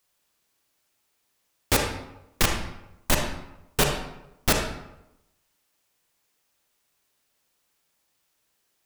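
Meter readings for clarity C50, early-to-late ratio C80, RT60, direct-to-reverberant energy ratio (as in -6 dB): 4.0 dB, 7.0 dB, 0.90 s, 2.0 dB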